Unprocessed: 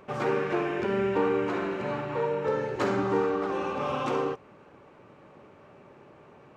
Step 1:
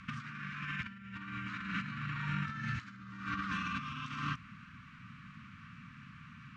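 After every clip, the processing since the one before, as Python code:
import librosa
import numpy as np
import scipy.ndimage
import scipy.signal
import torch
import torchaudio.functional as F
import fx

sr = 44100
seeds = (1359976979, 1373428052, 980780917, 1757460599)

y = scipy.signal.sosfilt(scipy.signal.cheby2(4, 40, [340.0, 840.0], 'bandstop', fs=sr, output='sos'), x)
y = fx.over_compress(y, sr, threshold_db=-41.0, ratio=-0.5)
y = scipy.signal.sosfilt(scipy.signal.butter(2, 5900.0, 'lowpass', fs=sr, output='sos'), y)
y = y * 10.0 ** (2.0 / 20.0)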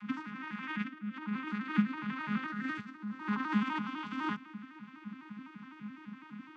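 y = fx.vocoder_arp(x, sr, chord='major triad', root=56, every_ms=84)
y = y * 10.0 ** (5.0 / 20.0)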